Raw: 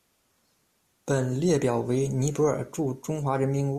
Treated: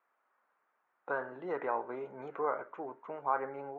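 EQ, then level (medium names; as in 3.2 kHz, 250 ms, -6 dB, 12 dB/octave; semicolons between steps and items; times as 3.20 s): high-pass 1.1 kHz 12 dB/octave; low-pass 1.5 kHz 24 dB/octave; +4.0 dB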